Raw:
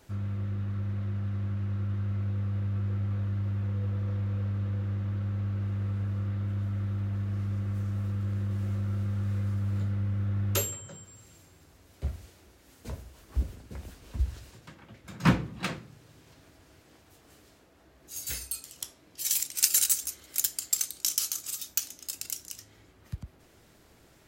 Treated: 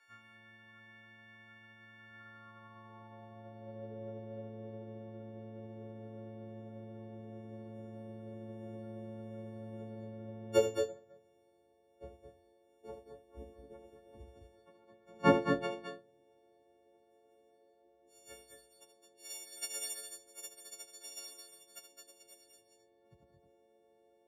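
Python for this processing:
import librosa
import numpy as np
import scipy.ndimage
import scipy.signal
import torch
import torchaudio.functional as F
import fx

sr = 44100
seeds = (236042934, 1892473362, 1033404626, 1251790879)

p1 = fx.freq_snap(x, sr, grid_st=4)
p2 = fx.filter_sweep_bandpass(p1, sr, from_hz=1700.0, to_hz=490.0, start_s=2.01, end_s=3.9, q=2.9)
p3 = p2 + fx.echo_multitap(p2, sr, ms=(77, 215, 236), db=(-8.0, -4.5, -7.5), dry=0)
p4 = fx.upward_expand(p3, sr, threshold_db=-60.0, expansion=1.5)
y = p4 * 10.0 ** (10.5 / 20.0)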